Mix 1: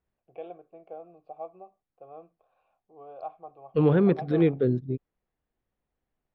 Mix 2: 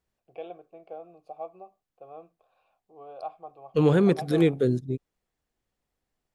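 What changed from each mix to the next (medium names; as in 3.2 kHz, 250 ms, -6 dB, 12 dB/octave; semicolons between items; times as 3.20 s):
master: remove distance through air 360 m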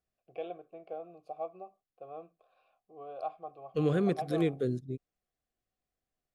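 second voice -8.0 dB; master: add Butterworth band-stop 900 Hz, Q 5.2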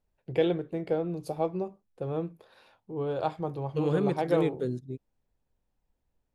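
first voice: remove vowel filter a; master: remove Butterworth band-stop 900 Hz, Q 5.2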